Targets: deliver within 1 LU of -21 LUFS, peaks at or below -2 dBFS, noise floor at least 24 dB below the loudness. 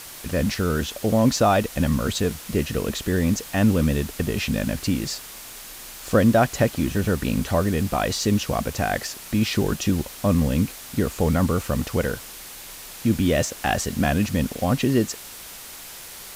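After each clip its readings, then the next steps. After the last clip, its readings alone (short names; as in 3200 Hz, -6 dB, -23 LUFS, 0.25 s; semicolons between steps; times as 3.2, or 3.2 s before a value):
noise floor -40 dBFS; noise floor target -47 dBFS; loudness -23.0 LUFS; peak -5.0 dBFS; loudness target -21.0 LUFS
-> noise print and reduce 7 dB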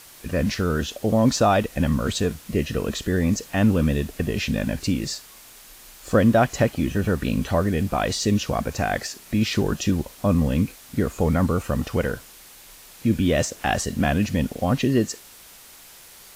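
noise floor -47 dBFS; loudness -23.0 LUFS; peak -5.0 dBFS; loudness target -21.0 LUFS
-> gain +2 dB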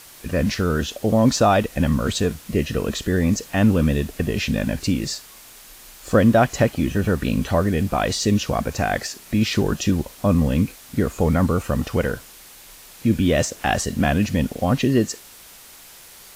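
loudness -21.0 LUFS; peak -3.0 dBFS; noise floor -45 dBFS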